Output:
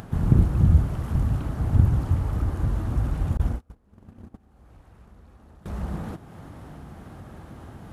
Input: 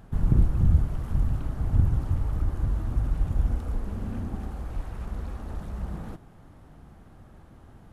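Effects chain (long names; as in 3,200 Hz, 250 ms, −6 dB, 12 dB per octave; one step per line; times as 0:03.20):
high-pass filter 63 Hz 12 dB per octave
0:03.37–0:05.66: noise gate −28 dBFS, range −35 dB
upward compression, threshold −40 dBFS
level +5.5 dB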